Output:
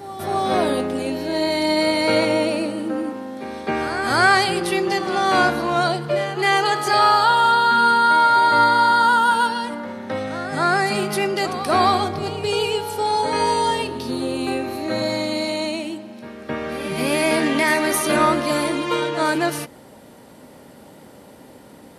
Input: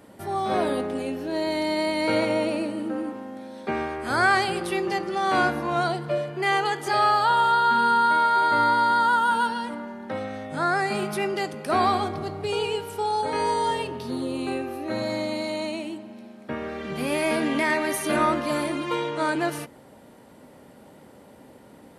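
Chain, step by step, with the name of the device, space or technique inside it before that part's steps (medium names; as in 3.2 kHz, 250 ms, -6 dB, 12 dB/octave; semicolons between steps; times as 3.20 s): pre-echo 264 ms -12 dB; presence and air boost (peaking EQ 4.9 kHz +4 dB 1.2 oct; treble shelf 11 kHz +6 dB); trim +4.5 dB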